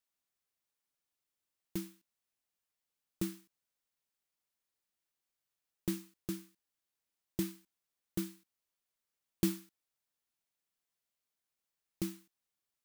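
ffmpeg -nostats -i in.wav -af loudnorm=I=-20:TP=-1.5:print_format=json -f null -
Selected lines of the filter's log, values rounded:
"input_i" : "-40.9",
"input_tp" : "-15.6",
"input_lra" : "7.4",
"input_thresh" : "-51.7",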